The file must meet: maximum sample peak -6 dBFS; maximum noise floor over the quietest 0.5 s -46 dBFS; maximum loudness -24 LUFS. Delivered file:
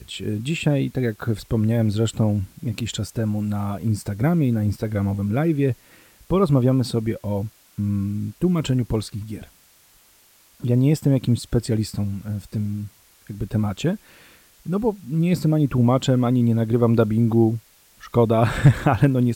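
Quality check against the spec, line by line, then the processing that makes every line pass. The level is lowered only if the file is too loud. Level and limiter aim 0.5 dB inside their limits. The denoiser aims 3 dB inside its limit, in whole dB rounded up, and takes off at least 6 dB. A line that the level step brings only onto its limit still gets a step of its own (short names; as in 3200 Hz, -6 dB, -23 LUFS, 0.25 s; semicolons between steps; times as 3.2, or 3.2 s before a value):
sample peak -5.0 dBFS: fail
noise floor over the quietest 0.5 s -55 dBFS: OK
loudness -22.0 LUFS: fail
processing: gain -2.5 dB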